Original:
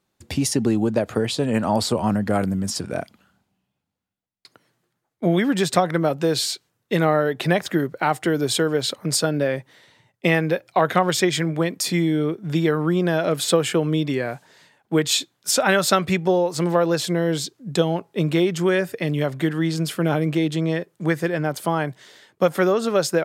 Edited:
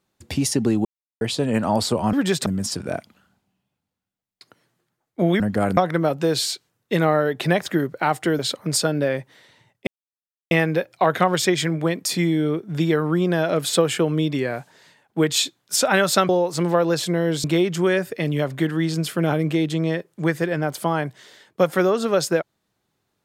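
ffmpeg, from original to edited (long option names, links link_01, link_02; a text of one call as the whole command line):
ffmpeg -i in.wav -filter_complex "[0:a]asplit=11[link_01][link_02][link_03][link_04][link_05][link_06][link_07][link_08][link_09][link_10][link_11];[link_01]atrim=end=0.85,asetpts=PTS-STARTPTS,afade=type=out:start_time=0.846:duration=0.004:curve=hsin[link_12];[link_02]atrim=start=0.85:end=1.21,asetpts=PTS-STARTPTS,volume=0[link_13];[link_03]atrim=start=1.21:end=2.132,asetpts=PTS-STARTPTS,afade=type=in:duration=0.004:curve=hsin[link_14];[link_04]atrim=start=5.438:end=5.772[link_15];[link_05]atrim=start=2.498:end=5.442[link_16];[link_06]atrim=start=2.128:end=2.502[link_17];[link_07]atrim=start=5.768:end=8.392[link_18];[link_08]atrim=start=8.778:end=10.26,asetpts=PTS-STARTPTS,afade=type=out:start_time=1.478:duration=0.004:curve=hsin,apad=pad_dur=0.64[link_19];[link_09]atrim=start=10.26:end=16.042,asetpts=PTS-STARTPTS,afade=type=in:duration=0.004:curve=hsin[link_20];[link_10]atrim=start=16.298:end=17.452[link_21];[link_11]atrim=start=18.258[link_22];[link_12][link_13][link_14]concat=n=3:v=0:a=1[link_23];[link_23][link_15]acrossfade=duration=0.004:curve1=hsin:curve2=hsin[link_24];[link_24][link_16]acrossfade=duration=0.004:curve1=hsin:curve2=hsin[link_25];[link_25][link_17]acrossfade=duration=0.004:curve1=hsin:curve2=hsin[link_26];[link_26][link_18]acrossfade=duration=0.004:curve1=hsin:curve2=hsin[link_27];[link_19][link_20]concat=n=2:v=0:a=1[link_28];[link_27][link_28]acrossfade=duration=0.004:curve1=hsin:curve2=hsin[link_29];[link_29][link_21]acrossfade=duration=0.004:curve1=hsin:curve2=hsin[link_30];[link_30][link_22]acrossfade=duration=0.004:curve1=hsin:curve2=hsin" out.wav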